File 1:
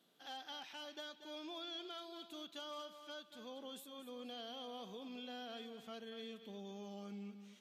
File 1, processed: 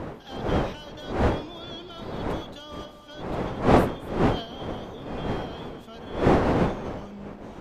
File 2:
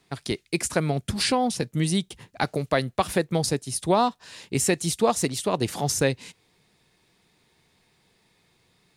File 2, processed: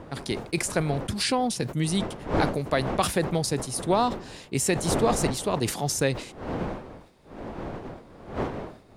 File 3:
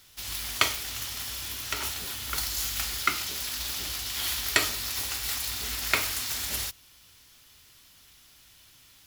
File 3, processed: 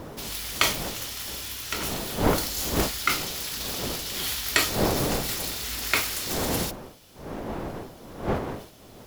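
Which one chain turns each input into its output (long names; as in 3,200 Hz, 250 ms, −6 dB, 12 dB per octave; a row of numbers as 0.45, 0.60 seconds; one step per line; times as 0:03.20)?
wind on the microphone 570 Hz −33 dBFS
level that may fall only so fast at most 110 dB per second
loudness normalisation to −27 LKFS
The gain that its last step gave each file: +5.5, −2.0, +0.5 decibels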